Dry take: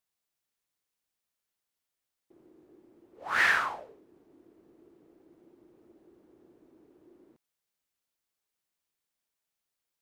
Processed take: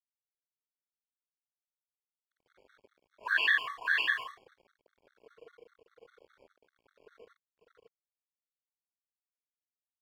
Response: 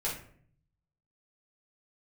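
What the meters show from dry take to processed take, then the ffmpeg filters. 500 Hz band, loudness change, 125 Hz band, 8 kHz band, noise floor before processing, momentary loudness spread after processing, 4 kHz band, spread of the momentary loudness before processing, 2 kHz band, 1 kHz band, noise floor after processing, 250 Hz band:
-6.0 dB, -2.0 dB, n/a, under -10 dB, under -85 dBFS, 16 LU, +4.5 dB, 21 LU, +0.5 dB, -6.5 dB, under -85 dBFS, under -10 dB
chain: -af "afftfilt=real='re*pow(10,23/40*sin(2*PI*(1.3*log(max(b,1)*sr/1024/100)/log(2)-(0.55)*(pts-256)/sr)))':imag='im*pow(10,23/40*sin(2*PI*(1.3*log(max(b,1)*sr/1024/100)/log(2)-(0.55)*(pts-256)/sr)))':win_size=1024:overlap=0.75,equalizer=f=600:w=6.9:g=-12.5,tremolo=f=1.1:d=0.73,aeval=exprs='0.398*(cos(1*acos(clip(val(0)/0.398,-1,1)))-cos(1*PI/2))+0.0141*(cos(3*acos(clip(val(0)/0.398,-1,1)))-cos(3*PI/2))+0.0447*(cos(4*acos(clip(val(0)/0.398,-1,1)))-cos(4*PI/2))+0.00447*(cos(5*acos(clip(val(0)/0.398,-1,1)))-cos(5*PI/2))+0.00355*(cos(8*acos(clip(val(0)/0.398,-1,1)))-cos(8*PI/2))':c=same,highpass=f=200:t=q:w=0.5412,highpass=f=200:t=q:w=1.307,lowpass=f=3.5k:t=q:w=0.5176,lowpass=f=3.5k:t=q:w=0.7071,lowpass=f=3.5k:t=q:w=1.932,afreqshift=130,aecho=1:1:551:0.668,crystalizer=i=6:c=0,acompressor=threshold=-32dB:ratio=4,aeval=exprs='sgn(val(0))*max(abs(val(0))-0.0015,0)':c=same,dynaudnorm=f=130:g=11:m=11dB,afftfilt=real='re*gt(sin(2*PI*5*pts/sr)*(1-2*mod(floor(b*sr/1024/1100),2)),0)':imag='im*gt(sin(2*PI*5*pts/sr)*(1-2*mod(floor(b*sr/1024/1100),2)),0)':win_size=1024:overlap=0.75,volume=-5dB"

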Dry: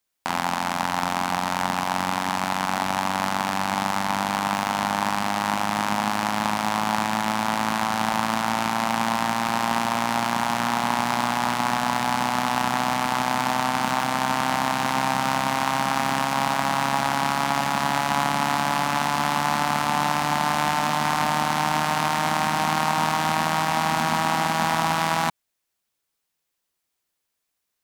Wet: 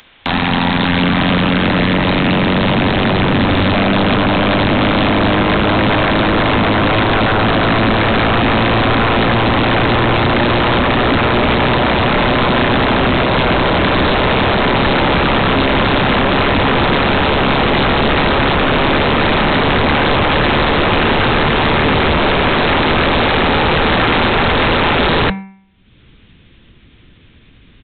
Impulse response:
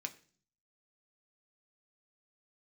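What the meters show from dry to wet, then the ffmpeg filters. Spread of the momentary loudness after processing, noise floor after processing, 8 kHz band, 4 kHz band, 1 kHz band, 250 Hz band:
1 LU, -45 dBFS, under -40 dB, +12.0 dB, +6.0 dB, +14.0 dB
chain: -filter_complex "[0:a]bandreject=f=193.2:t=h:w=4,bandreject=f=386.4:t=h:w=4,bandreject=f=579.6:t=h:w=4,bandreject=f=772.8:t=h:w=4,bandreject=f=966:t=h:w=4,bandreject=f=1.1592k:t=h:w=4,bandreject=f=1.3524k:t=h:w=4,bandreject=f=1.5456k:t=h:w=4,bandreject=f=1.7388k:t=h:w=4,bandreject=f=1.932k:t=h:w=4,bandreject=f=2.1252k:t=h:w=4,bandreject=f=2.3184k:t=h:w=4,bandreject=f=2.5116k:t=h:w=4,bandreject=f=2.7048k:t=h:w=4,asubboost=boost=11:cutoff=230,aresample=8000,aeval=exprs='0.668*sin(PI/2*10*val(0)/0.668)':c=same,aresample=44100,acompressor=mode=upward:threshold=-24dB:ratio=2.5,equalizer=f=770:w=0.33:g=-4,asplit=2[a][b];[1:a]atrim=start_sample=2205,afade=t=out:st=0.19:d=0.01,atrim=end_sample=8820[c];[b][c]afir=irnorm=-1:irlink=0,volume=-7.5dB[d];[a][d]amix=inputs=2:normalize=0,volume=-5dB"

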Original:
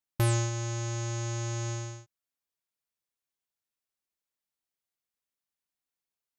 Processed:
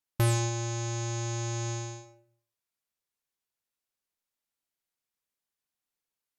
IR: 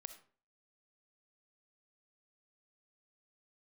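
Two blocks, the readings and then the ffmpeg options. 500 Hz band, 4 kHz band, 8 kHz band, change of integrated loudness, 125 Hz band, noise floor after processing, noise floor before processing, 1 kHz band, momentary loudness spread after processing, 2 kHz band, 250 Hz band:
+1.0 dB, +1.5 dB, +1.5 dB, +0.5 dB, 0.0 dB, under -85 dBFS, under -85 dBFS, +2.0 dB, 11 LU, +0.5 dB, +1.5 dB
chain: -filter_complex "[1:a]atrim=start_sample=2205,asetrate=32634,aresample=44100[a];[0:a][a]afir=irnorm=-1:irlink=0,volume=5dB"

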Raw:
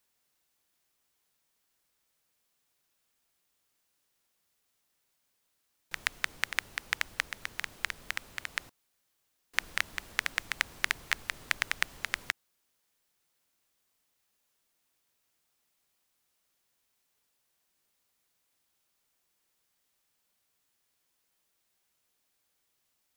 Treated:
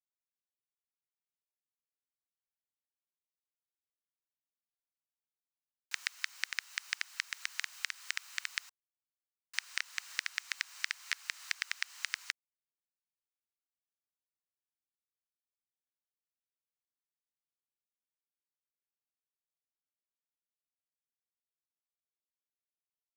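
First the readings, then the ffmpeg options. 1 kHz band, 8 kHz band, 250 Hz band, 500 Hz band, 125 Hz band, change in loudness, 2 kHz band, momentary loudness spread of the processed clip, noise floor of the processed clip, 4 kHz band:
-10.0 dB, -1.5 dB, under -15 dB, under -20 dB, under -20 dB, -4.5 dB, -5.5 dB, 3 LU, under -85 dBFS, -2.5 dB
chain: -af "asoftclip=type=tanh:threshold=-12dB,lowpass=f=7.6k:w=0.5412,lowpass=f=7.6k:w=1.3066,bandreject=f=3.4k:w=14,acrusher=bits=10:mix=0:aa=0.000001,highpass=f=1.1k:w=0.5412,highpass=f=1.1k:w=1.3066,crystalizer=i=2:c=0,acompressor=threshold=-36dB:ratio=3,volume=3dB"

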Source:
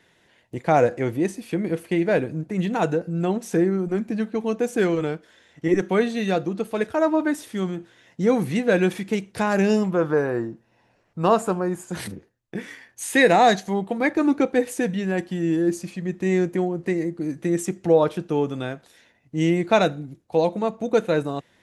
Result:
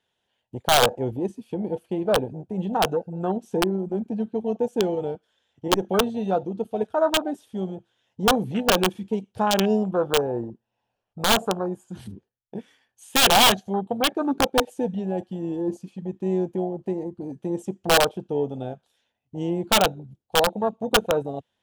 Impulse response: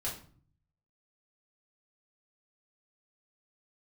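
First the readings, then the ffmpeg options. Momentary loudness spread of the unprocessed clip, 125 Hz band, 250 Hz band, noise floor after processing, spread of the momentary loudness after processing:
12 LU, -4.5 dB, -4.0 dB, -79 dBFS, 15 LU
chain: -af "afwtdn=0.0562,aeval=exprs='(mod(3.55*val(0)+1,2)-1)/3.55':c=same,equalizer=f=160:t=o:w=0.33:g=-8,equalizer=f=315:t=o:w=0.33:g=-8,equalizer=f=800:t=o:w=0.33:g=5,equalizer=f=2k:t=o:w=0.33:g=-9,equalizer=f=3.15k:t=o:w=0.33:g=8"

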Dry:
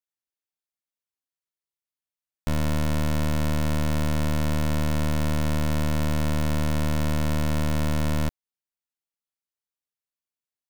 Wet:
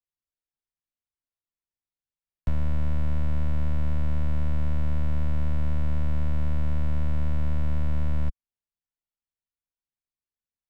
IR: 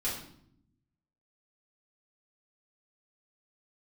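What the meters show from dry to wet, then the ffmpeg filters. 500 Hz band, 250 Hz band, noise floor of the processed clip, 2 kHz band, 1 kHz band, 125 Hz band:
-11.0 dB, -8.0 dB, under -85 dBFS, -12.0 dB, -10.5 dB, -1.5 dB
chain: -filter_complex "[0:a]aemphasis=mode=reproduction:type=bsi,acrusher=bits=9:mode=log:mix=0:aa=0.000001,acrossover=split=170|500|3300[a][b][c][d];[a]acompressor=threshold=-14dB:ratio=4[e];[b]acompressor=threshold=-36dB:ratio=4[f];[c]acompressor=threshold=-36dB:ratio=4[g];[d]acompressor=threshold=-58dB:ratio=4[h];[e][f][g][h]amix=inputs=4:normalize=0,volume=-6dB"

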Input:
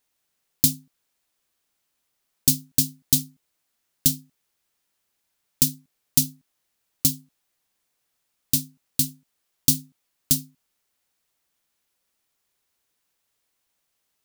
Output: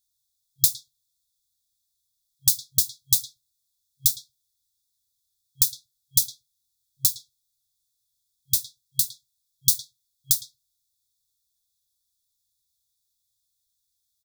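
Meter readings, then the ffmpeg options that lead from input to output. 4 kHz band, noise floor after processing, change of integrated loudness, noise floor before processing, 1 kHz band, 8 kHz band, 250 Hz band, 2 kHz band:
0.0 dB, -77 dBFS, -0.5 dB, -76 dBFS, n/a, 0.0 dB, under -25 dB, under -35 dB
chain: -filter_complex "[0:a]afftfilt=real='re*(1-between(b*sr/4096,130,3300))':imag='im*(1-between(b*sr/4096,130,3300))':win_size=4096:overlap=0.75,asplit=2[a][b];[b]adelay=110,highpass=300,lowpass=3.4k,asoftclip=type=hard:threshold=-11dB,volume=-7dB[c];[a][c]amix=inputs=2:normalize=0"

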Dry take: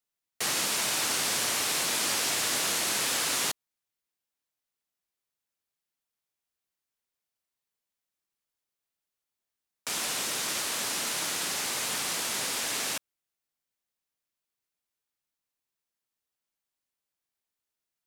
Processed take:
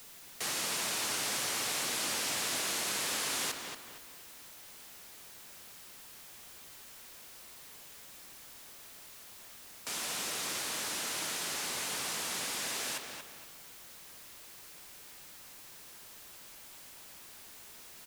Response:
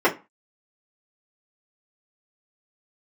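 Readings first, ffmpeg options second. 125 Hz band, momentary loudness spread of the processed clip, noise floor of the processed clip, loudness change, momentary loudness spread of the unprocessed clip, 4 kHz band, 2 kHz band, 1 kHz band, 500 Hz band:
-4.5 dB, 17 LU, -52 dBFS, -6.0 dB, 5 LU, -5.5 dB, -5.0 dB, -5.0 dB, -4.5 dB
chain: -filter_complex "[0:a]aeval=exprs='val(0)+0.5*0.0141*sgn(val(0))':c=same,asplit=2[a][b];[b]adelay=232,lowpass=f=3.7k:p=1,volume=-5dB,asplit=2[c][d];[d]adelay=232,lowpass=f=3.7k:p=1,volume=0.39,asplit=2[e][f];[f]adelay=232,lowpass=f=3.7k:p=1,volume=0.39,asplit=2[g][h];[h]adelay=232,lowpass=f=3.7k:p=1,volume=0.39,asplit=2[i][j];[j]adelay=232,lowpass=f=3.7k:p=1,volume=0.39[k];[a][c][e][g][i][k]amix=inputs=6:normalize=0,volume=-7.5dB"

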